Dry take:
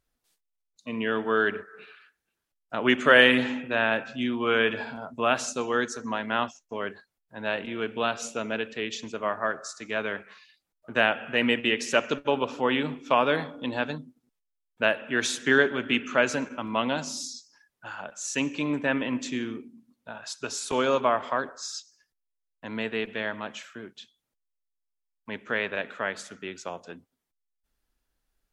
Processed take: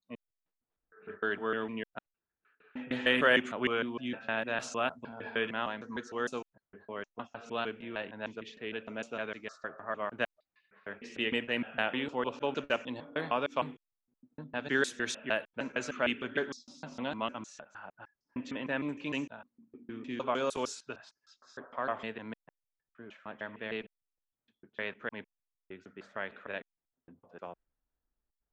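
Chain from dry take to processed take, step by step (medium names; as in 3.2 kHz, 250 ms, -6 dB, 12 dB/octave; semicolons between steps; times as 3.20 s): slices played last to first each 153 ms, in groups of 6; level-controlled noise filter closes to 1.3 kHz, open at -20.5 dBFS; trim -8 dB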